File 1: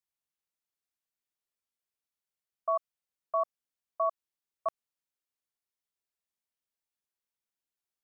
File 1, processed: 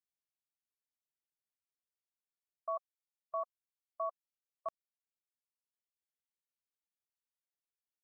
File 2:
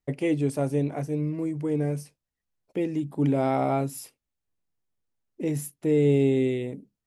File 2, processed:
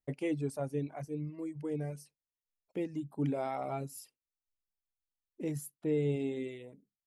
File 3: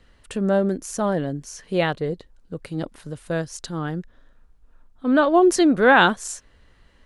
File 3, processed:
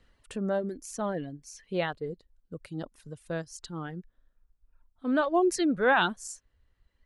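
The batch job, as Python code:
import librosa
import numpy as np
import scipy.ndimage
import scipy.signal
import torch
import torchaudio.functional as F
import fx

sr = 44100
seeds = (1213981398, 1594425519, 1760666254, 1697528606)

y = fx.dereverb_blind(x, sr, rt60_s=1.5)
y = y * librosa.db_to_amplitude(-8.0)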